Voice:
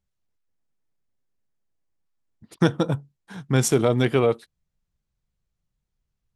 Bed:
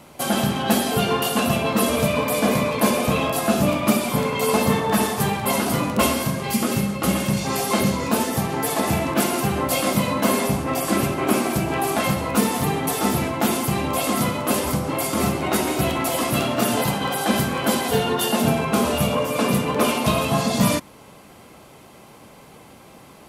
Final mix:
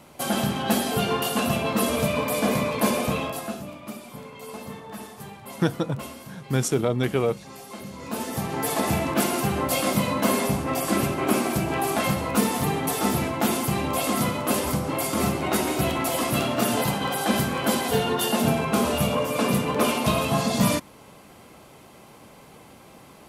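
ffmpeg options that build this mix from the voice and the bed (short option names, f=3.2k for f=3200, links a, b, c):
-filter_complex "[0:a]adelay=3000,volume=-3.5dB[a];[1:a]volume=12.5dB,afade=t=out:st=3:d=0.64:silence=0.177828,afade=t=in:st=7.89:d=0.8:silence=0.158489[b];[a][b]amix=inputs=2:normalize=0"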